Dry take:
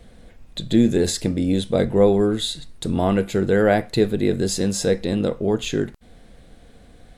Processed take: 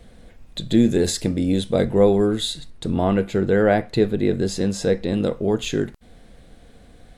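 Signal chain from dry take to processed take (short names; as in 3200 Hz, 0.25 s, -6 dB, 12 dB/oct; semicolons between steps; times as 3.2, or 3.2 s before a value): 2.7–5.14 LPF 3600 Hz 6 dB/oct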